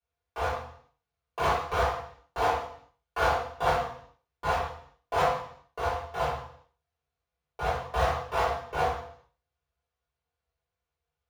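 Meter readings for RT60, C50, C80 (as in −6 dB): 0.60 s, 2.0 dB, 5.5 dB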